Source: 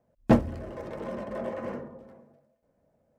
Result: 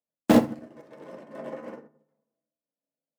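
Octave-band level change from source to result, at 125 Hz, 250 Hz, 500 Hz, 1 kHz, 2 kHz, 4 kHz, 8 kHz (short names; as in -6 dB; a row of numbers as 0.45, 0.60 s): -5.0 dB, +3.0 dB, +1.5 dB, +1.5 dB, +3.0 dB, +9.5 dB, n/a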